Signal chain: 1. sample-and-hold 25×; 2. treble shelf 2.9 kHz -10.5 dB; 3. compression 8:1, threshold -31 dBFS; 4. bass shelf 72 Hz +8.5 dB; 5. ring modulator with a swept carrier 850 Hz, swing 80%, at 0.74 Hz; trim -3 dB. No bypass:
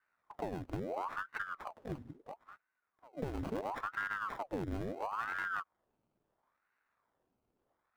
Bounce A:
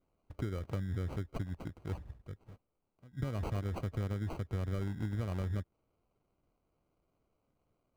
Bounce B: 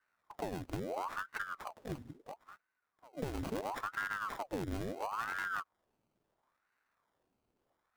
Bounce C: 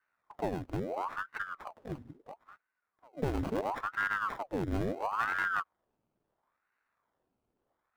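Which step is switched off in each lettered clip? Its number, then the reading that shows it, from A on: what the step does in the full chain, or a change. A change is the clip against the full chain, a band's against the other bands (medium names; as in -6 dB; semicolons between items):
5, crest factor change -3.0 dB; 2, 8 kHz band +9.0 dB; 3, mean gain reduction 3.5 dB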